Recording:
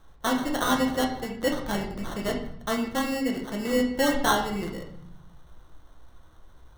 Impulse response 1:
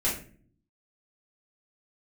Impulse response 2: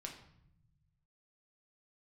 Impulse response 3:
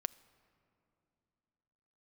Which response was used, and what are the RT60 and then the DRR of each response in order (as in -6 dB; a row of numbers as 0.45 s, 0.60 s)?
2; no single decay rate, 0.70 s, 2.9 s; -8.0 dB, 0.5 dB, 17.5 dB